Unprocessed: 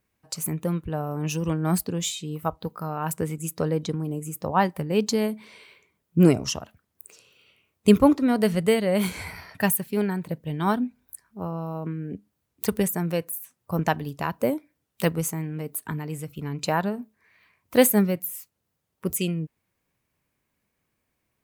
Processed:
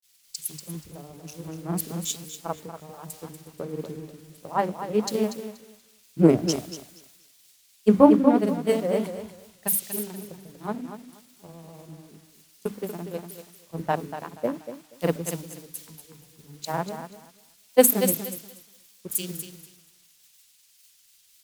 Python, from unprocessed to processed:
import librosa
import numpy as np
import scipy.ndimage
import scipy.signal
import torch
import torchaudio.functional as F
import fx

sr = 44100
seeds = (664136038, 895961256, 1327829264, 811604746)

p1 = fx.wiener(x, sr, points=25)
p2 = fx.highpass(p1, sr, hz=220.0, slope=6)
p3 = fx.peak_eq(p2, sr, hz=1900.0, db=-6.0, octaves=1.6)
p4 = fx.hum_notches(p3, sr, base_hz=50, count=6)
p5 = fx.quant_dither(p4, sr, seeds[0], bits=6, dither='triangular')
p6 = p4 + F.gain(torch.from_numpy(p5), -5.0).numpy()
p7 = fx.vibrato(p6, sr, rate_hz=6.6, depth_cents=45.0)
p8 = fx.granulator(p7, sr, seeds[1], grain_ms=100.0, per_s=20.0, spray_ms=31.0, spread_st=0)
p9 = p8 + fx.echo_feedback(p8, sr, ms=240, feedback_pct=40, wet_db=-6.0, dry=0)
p10 = fx.band_widen(p9, sr, depth_pct=100)
y = F.gain(torch.from_numpy(p10), -7.0).numpy()